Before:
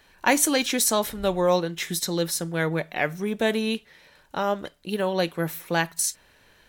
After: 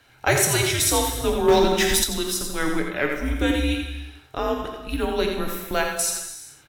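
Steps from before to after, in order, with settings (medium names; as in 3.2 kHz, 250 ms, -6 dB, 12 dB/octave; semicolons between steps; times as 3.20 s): peaking EQ 320 Hz -5 dB 0.34 oct; frequency shift -150 Hz; delay 86 ms -6.5 dB; gated-style reverb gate 470 ms falling, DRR 3.5 dB; 1.48–2.04 s: waveshaping leveller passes 2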